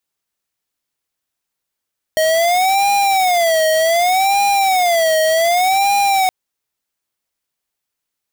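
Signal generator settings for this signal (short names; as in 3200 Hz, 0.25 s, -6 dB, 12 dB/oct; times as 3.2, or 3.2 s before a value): siren wail 631–806 Hz 0.66/s square -14 dBFS 4.12 s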